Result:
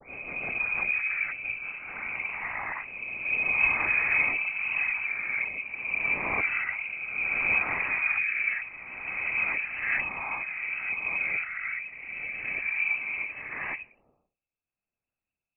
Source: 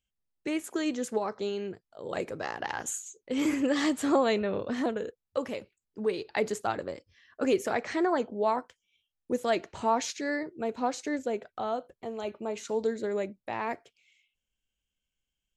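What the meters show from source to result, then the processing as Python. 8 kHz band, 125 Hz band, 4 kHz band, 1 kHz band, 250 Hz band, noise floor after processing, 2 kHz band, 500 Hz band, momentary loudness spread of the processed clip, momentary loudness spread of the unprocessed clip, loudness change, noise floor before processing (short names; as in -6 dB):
under -40 dB, -3.0 dB, under -10 dB, -6.0 dB, -18.5 dB, under -85 dBFS, +14.0 dB, -17.5 dB, 11 LU, 10 LU, +3.5 dB, under -85 dBFS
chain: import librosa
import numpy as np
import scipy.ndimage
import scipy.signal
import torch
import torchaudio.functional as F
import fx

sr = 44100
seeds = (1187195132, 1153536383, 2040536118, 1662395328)

p1 = fx.spec_swells(x, sr, rise_s=2.22)
p2 = fx.peak_eq(p1, sr, hz=250.0, db=4.0, octaves=0.69)
p3 = fx.rotary_switch(p2, sr, hz=6.0, then_hz=0.8, switch_at_s=1.36)
p4 = fx.dispersion(p3, sr, late='lows', ms=94.0, hz=440.0)
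p5 = fx.noise_vocoder(p4, sr, seeds[0], bands=16)
p6 = p5 + fx.echo_thinned(p5, sr, ms=82, feedback_pct=41, hz=870.0, wet_db=-23.0, dry=0)
p7 = fx.freq_invert(p6, sr, carrier_hz=2800)
y = p7 * librosa.db_to_amplitude(-2.0)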